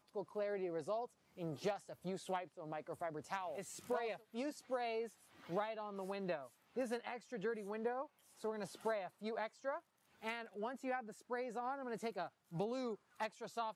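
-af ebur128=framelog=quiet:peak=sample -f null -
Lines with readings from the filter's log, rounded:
Integrated loudness:
  I:         -44.0 LUFS
  Threshold: -54.1 LUFS
Loudness range:
  LRA:         1.1 LU
  Threshold: -64.2 LUFS
  LRA low:   -44.7 LUFS
  LRA high:  -43.6 LUFS
Sample peak:
  Peak:      -27.3 dBFS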